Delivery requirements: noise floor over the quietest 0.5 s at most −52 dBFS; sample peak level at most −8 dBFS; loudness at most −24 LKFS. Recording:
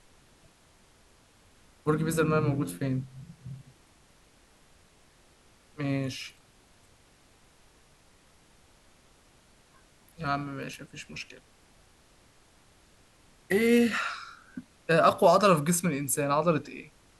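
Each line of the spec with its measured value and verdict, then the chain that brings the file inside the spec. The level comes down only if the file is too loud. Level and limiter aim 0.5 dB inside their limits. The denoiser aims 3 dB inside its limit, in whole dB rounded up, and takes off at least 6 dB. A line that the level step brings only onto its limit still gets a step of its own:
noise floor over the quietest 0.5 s −61 dBFS: in spec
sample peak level −9.0 dBFS: in spec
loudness −27.0 LKFS: in spec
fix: no processing needed

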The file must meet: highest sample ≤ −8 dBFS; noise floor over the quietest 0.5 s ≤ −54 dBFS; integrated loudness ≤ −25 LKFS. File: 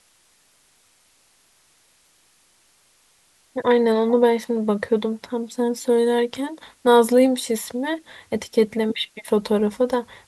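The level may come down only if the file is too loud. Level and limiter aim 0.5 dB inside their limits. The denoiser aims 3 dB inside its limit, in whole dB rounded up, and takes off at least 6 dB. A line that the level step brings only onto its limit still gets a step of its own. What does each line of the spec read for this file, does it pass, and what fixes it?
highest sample −4.5 dBFS: out of spec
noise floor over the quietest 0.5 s −60 dBFS: in spec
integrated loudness −21.0 LKFS: out of spec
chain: level −4.5 dB

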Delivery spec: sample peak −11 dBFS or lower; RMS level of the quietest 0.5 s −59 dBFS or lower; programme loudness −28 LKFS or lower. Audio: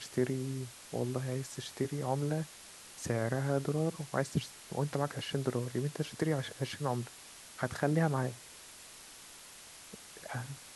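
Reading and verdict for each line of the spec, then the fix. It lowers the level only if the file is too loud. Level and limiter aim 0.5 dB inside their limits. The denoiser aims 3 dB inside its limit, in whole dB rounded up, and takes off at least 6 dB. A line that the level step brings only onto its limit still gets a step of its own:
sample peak −15.0 dBFS: in spec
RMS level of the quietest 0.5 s −52 dBFS: out of spec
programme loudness −35.5 LKFS: in spec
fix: broadband denoise 10 dB, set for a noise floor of −52 dBFS

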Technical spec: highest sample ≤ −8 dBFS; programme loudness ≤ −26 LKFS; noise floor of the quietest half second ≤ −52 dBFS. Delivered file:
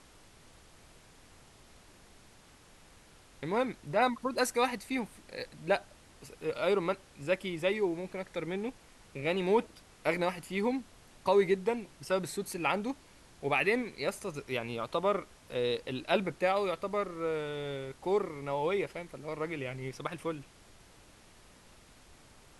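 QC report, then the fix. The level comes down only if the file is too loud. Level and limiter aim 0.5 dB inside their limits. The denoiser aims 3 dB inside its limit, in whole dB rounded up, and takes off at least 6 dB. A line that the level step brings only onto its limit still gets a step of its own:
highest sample −13.5 dBFS: in spec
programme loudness −33.0 LKFS: in spec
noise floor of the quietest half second −58 dBFS: in spec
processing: no processing needed

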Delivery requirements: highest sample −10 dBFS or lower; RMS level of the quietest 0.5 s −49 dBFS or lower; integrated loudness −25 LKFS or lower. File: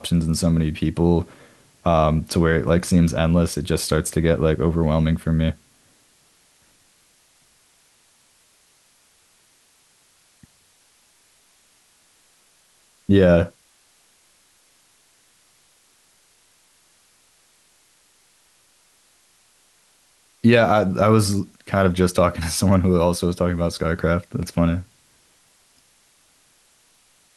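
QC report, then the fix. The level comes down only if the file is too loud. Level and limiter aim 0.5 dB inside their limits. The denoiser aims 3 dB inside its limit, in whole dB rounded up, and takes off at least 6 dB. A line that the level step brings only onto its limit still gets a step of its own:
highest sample −4.0 dBFS: out of spec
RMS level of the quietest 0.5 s −59 dBFS: in spec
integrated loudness −19.5 LKFS: out of spec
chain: level −6 dB
brickwall limiter −10.5 dBFS

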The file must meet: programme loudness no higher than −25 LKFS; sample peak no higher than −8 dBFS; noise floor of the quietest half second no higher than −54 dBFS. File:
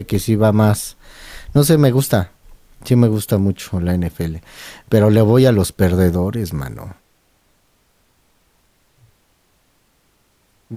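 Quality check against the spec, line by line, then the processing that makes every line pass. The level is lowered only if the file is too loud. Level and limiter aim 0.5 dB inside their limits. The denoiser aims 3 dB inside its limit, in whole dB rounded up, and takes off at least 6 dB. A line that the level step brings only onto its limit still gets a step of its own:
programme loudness −16.0 LKFS: out of spec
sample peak −2.5 dBFS: out of spec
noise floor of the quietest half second −60 dBFS: in spec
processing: level −9.5 dB

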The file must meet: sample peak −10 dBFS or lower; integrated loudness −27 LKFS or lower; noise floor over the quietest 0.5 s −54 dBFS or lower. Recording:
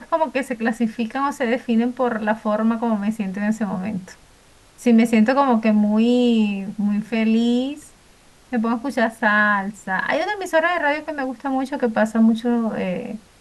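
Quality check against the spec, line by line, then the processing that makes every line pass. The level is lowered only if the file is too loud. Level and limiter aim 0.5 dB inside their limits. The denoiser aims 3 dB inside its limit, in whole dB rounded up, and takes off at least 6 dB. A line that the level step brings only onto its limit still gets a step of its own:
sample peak −5.0 dBFS: out of spec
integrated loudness −20.5 LKFS: out of spec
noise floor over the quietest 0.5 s −51 dBFS: out of spec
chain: level −7 dB

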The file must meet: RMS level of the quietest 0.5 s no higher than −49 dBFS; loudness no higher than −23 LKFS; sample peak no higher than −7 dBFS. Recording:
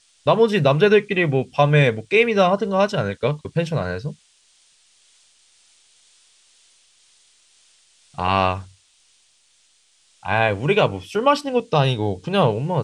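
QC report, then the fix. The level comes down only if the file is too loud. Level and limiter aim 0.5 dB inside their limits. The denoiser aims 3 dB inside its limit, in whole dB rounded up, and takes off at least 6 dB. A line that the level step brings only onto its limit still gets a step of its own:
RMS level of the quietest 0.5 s −60 dBFS: in spec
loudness −19.5 LKFS: out of spec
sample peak −4.0 dBFS: out of spec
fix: level −4 dB

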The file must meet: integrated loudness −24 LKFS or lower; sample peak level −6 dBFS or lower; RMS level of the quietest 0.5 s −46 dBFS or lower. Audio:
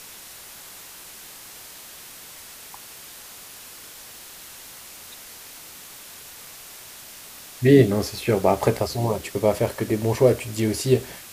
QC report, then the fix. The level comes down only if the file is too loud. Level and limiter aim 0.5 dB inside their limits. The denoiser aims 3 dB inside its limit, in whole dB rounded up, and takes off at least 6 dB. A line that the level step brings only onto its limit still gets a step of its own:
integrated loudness −21.5 LKFS: out of spec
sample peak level −3.5 dBFS: out of spec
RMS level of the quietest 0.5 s −42 dBFS: out of spec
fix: broadband denoise 6 dB, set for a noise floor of −42 dBFS
level −3 dB

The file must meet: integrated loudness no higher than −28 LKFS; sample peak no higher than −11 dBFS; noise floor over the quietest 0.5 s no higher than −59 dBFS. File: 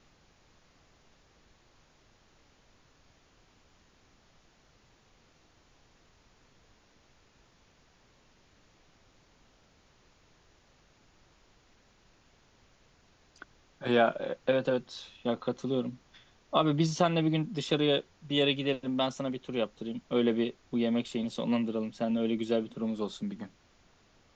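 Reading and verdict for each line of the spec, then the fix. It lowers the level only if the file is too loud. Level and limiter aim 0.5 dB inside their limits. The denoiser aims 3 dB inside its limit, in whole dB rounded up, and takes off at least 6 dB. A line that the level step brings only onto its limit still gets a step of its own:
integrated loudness −30.5 LKFS: in spec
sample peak −10.0 dBFS: out of spec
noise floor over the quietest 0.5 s −64 dBFS: in spec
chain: brickwall limiter −11.5 dBFS

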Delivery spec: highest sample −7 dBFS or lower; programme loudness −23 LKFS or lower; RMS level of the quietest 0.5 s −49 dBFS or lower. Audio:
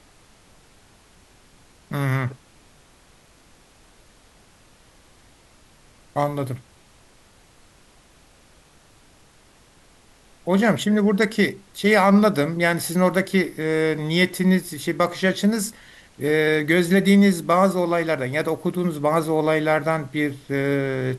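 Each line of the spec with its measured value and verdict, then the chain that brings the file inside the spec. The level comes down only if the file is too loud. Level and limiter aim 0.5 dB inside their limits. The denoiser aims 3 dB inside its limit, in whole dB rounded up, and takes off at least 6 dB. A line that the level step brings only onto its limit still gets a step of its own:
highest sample −5.5 dBFS: out of spec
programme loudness −21.0 LKFS: out of spec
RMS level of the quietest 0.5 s −54 dBFS: in spec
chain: level −2.5 dB

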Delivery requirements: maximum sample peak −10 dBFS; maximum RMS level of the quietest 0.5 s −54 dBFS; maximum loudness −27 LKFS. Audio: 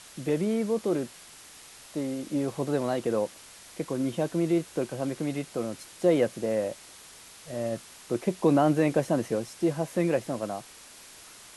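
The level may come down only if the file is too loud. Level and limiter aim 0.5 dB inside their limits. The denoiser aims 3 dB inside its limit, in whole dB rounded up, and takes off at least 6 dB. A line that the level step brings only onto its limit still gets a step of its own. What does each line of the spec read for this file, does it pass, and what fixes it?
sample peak −11.0 dBFS: in spec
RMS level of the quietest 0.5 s −49 dBFS: out of spec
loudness −28.5 LKFS: in spec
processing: broadband denoise 8 dB, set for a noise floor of −49 dBFS

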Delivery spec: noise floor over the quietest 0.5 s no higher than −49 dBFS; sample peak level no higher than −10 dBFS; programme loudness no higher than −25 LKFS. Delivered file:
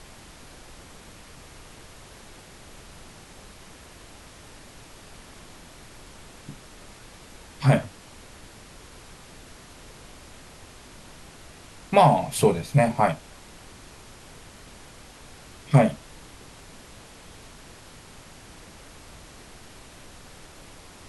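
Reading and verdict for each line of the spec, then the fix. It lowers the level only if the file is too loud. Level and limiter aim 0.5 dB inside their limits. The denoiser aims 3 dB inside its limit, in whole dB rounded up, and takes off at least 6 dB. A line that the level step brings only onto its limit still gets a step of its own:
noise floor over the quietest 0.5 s −47 dBFS: out of spec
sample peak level −4.0 dBFS: out of spec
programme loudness −22.0 LKFS: out of spec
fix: level −3.5 dB
brickwall limiter −10.5 dBFS

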